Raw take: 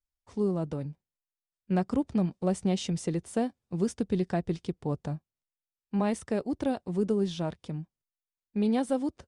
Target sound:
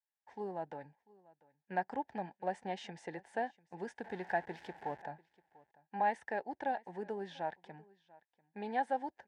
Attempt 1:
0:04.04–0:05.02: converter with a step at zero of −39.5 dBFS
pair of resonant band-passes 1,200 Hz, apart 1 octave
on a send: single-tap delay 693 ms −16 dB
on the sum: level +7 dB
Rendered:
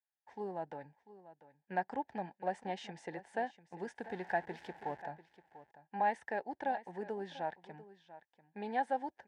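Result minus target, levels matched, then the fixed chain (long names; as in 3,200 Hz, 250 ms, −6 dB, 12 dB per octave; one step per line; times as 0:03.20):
echo-to-direct +7 dB
0:04.04–0:05.02: converter with a step at zero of −39.5 dBFS
pair of resonant band-passes 1,200 Hz, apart 1 octave
on a send: single-tap delay 693 ms −23 dB
on the sum: level +7 dB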